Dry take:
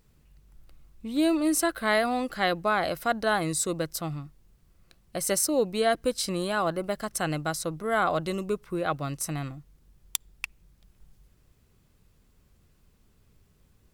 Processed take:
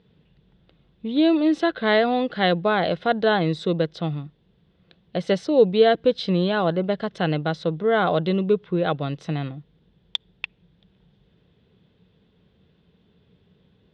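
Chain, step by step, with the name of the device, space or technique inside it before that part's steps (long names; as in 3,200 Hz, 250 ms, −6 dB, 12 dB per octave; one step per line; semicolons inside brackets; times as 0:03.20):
guitar cabinet (loudspeaker in its box 100–3,500 Hz, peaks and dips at 180 Hz +8 dB, 450 Hz +7 dB, 1,200 Hz −7 dB, 2,300 Hz −4 dB, 3,500 Hz +10 dB)
level +4.5 dB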